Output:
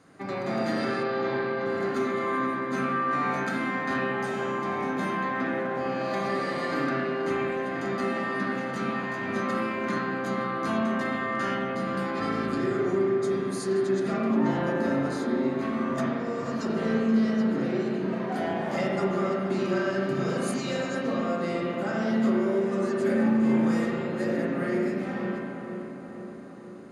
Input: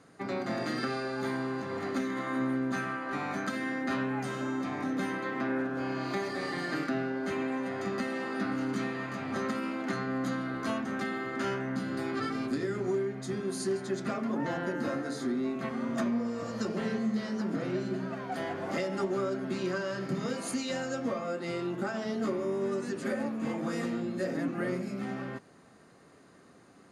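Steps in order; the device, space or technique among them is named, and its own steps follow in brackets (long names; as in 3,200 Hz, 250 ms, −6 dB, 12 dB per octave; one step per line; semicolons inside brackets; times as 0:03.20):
dub delay into a spring reverb (feedback echo with a low-pass in the loop 475 ms, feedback 64%, low-pass 2,200 Hz, level −7.5 dB; spring reverb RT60 1.4 s, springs 36/58 ms, chirp 55 ms, DRR −3 dB)
0:01.03–0:01.66: low-pass filter 5,000 Hz 24 dB per octave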